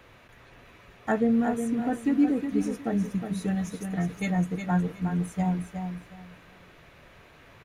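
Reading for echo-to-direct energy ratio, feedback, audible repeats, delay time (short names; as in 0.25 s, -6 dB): -7.0 dB, 22%, 3, 0.363 s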